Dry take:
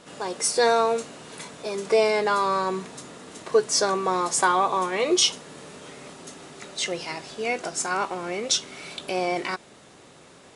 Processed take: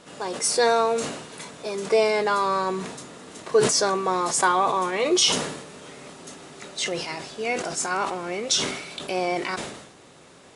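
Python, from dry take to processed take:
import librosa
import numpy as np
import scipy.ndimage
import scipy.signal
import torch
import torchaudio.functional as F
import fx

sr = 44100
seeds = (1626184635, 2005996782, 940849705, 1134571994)

y = fx.sustainer(x, sr, db_per_s=60.0)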